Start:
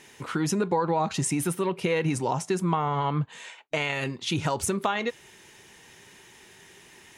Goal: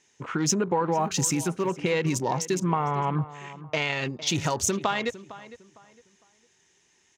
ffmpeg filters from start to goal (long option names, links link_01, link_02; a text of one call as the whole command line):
ffmpeg -i in.wav -filter_complex "[0:a]lowpass=frequency=6500:width_type=q:width=3.4,asettb=1/sr,asplit=3[link_01][link_02][link_03];[link_01]atrim=end=0.924[link_04];[link_02]atrim=start=0.92:end=1.69,asetpts=PTS-STARTPTS,afade=type=in:duration=0.004:curve=qsin,afade=type=out:start_time=0.766:duration=0.004:curve=qsin,acrusher=bits=6:mode=log:mix=0:aa=0.000001[link_05];[link_03]atrim=start=1.686[link_06];[link_04][link_05]acrossfade=duration=0.004:curve1=hsin:curve2=qsin[link_07];[link_07][link_06]acrossfade=duration=0.004:curve1=qsin:curve2=hsin,afwtdn=0.01,asplit=2[link_08][link_09];[link_09]adelay=456,lowpass=frequency=2600:poles=1,volume=-16dB,asplit=2[link_10][link_11];[link_11]adelay=456,lowpass=frequency=2600:poles=1,volume=0.29,asplit=2[link_12][link_13];[link_13]adelay=456,lowpass=frequency=2600:poles=1,volume=0.29[link_14];[link_10][link_12][link_14]amix=inputs=3:normalize=0[link_15];[link_08][link_15]amix=inputs=2:normalize=0" out.wav